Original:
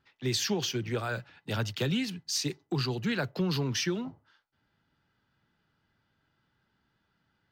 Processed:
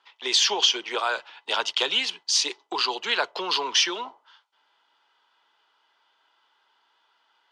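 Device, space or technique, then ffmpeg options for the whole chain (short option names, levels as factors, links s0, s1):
phone speaker on a table: -af "highpass=f=480:w=0.5412,highpass=f=480:w=1.3066,equalizer=f=550:t=q:w=4:g=-5,equalizer=f=980:t=q:w=4:g=9,equalizer=f=1700:t=q:w=4:g=-4,equalizer=f=3200:t=q:w=4:g=8,equalizer=f=8000:t=q:w=4:g=-3,lowpass=f=8600:w=0.5412,lowpass=f=8600:w=1.3066,volume=2.82"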